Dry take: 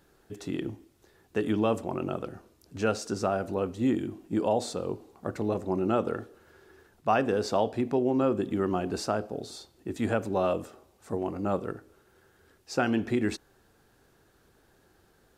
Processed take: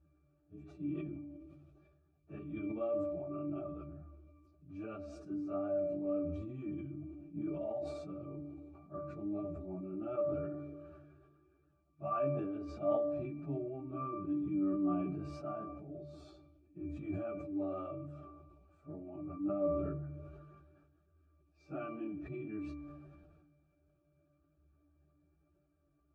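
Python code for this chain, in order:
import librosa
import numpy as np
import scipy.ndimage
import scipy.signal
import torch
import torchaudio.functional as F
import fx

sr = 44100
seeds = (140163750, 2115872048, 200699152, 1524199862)

y = fx.vibrato(x, sr, rate_hz=0.69, depth_cents=41.0)
y = fx.octave_resonator(y, sr, note='D', decay_s=0.25)
y = fx.stretch_vocoder_free(y, sr, factor=1.7)
y = fx.sustainer(y, sr, db_per_s=31.0)
y = y * librosa.db_to_amplitude(5.0)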